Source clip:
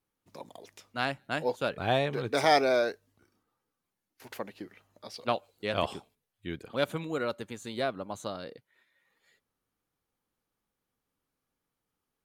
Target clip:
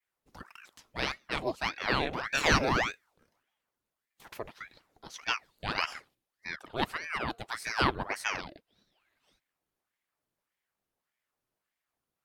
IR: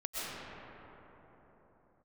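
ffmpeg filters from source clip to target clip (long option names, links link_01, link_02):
-filter_complex "[0:a]adynamicequalizer=threshold=0.00447:dfrequency=3200:dqfactor=0.79:tfrequency=3200:tqfactor=0.79:attack=5:release=100:ratio=0.375:range=2:mode=boostabove:tftype=bell,asettb=1/sr,asplit=3[link_01][link_02][link_03];[link_01]atrim=end=7.494[link_04];[link_02]atrim=start=7.49:end=8.41,asetpts=PTS-STARTPTS,afade=type=in:duration=0.004:curve=qsin,afade=type=out:start_time=0.916:duration=0.004:curve=qsin,acontrast=52[link_05];[link_03]atrim=start=8.406[link_06];[link_04][link_05]acrossfade=duration=0.004:curve1=hsin:curve2=qsin[link_07];[link_07][link_06]acrossfade=duration=0.004:curve1=qsin:curve2=hsin,aeval=exprs='val(0)*sin(2*PI*1100*n/s+1100*0.9/1.7*sin(2*PI*1.7*n/s))':channel_layout=same"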